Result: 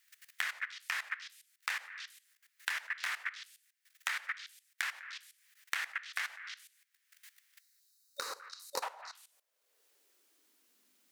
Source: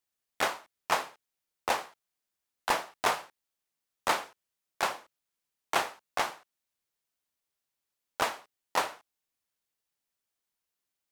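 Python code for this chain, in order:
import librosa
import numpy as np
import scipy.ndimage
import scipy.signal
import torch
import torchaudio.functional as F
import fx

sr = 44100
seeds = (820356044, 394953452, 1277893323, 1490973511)

p1 = fx.spec_box(x, sr, start_s=7.6, length_s=1.23, low_hz=570.0, high_hz=3700.0, gain_db=-21)
p2 = fx.filter_sweep_highpass(p1, sr, from_hz=1800.0, to_hz=240.0, start_s=7.7, end_s=10.8, q=3.2)
p3 = p2 + fx.echo_stepped(p2, sr, ms=100, hz=620.0, octaves=1.4, feedback_pct=70, wet_db=-6, dry=0)
p4 = fx.level_steps(p3, sr, step_db=17)
p5 = fx.peak_eq(p4, sr, hz=770.0, db=-5.5, octaves=1.2)
p6 = fx.band_squash(p5, sr, depth_pct=100)
y = p6 * librosa.db_to_amplitude(1.0)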